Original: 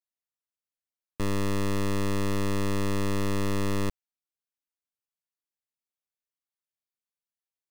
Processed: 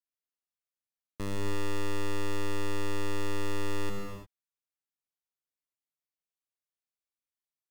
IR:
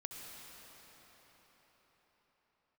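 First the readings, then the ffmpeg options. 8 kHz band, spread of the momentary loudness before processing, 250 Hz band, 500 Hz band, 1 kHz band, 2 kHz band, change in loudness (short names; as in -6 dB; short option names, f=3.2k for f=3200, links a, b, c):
-5.0 dB, 3 LU, -8.0 dB, -4.5 dB, -4.5 dB, -3.0 dB, -6.5 dB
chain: -filter_complex "[1:a]atrim=start_sample=2205,afade=t=out:st=0.38:d=0.01,atrim=end_sample=17199,asetrate=40572,aresample=44100[a];[0:a][a]afir=irnorm=-1:irlink=0,volume=-2dB"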